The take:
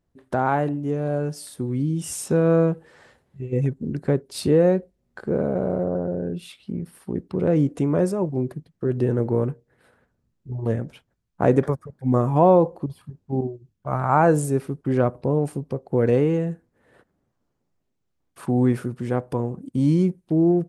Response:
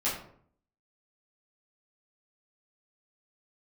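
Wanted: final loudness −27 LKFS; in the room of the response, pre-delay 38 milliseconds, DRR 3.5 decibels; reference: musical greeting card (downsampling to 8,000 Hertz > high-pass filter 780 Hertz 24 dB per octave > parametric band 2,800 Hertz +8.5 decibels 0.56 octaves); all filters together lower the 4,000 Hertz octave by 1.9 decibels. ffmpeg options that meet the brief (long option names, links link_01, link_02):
-filter_complex "[0:a]equalizer=frequency=4000:width_type=o:gain=-7.5,asplit=2[link_01][link_02];[1:a]atrim=start_sample=2205,adelay=38[link_03];[link_02][link_03]afir=irnorm=-1:irlink=0,volume=-11.5dB[link_04];[link_01][link_04]amix=inputs=2:normalize=0,aresample=8000,aresample=44100,highpass=frequency=780:width=0.5412,highpass=frequency=780:width=1.3066,equalizer=frequency=2800:width_type=o:width=0.56:gain=8.5,volume=4.5dB"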